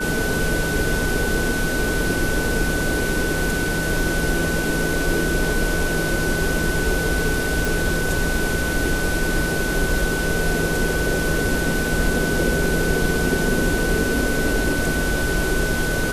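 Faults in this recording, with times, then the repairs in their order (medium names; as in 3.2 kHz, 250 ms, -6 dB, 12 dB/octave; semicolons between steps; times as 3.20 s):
whine 1.5 kHz -25 dBFS
7.65 s: pop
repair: de-click; band-stop 1.5 kHz, Q 30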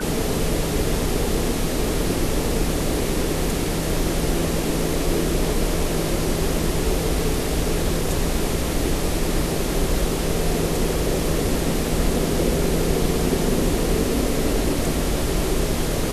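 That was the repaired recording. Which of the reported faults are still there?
nothing left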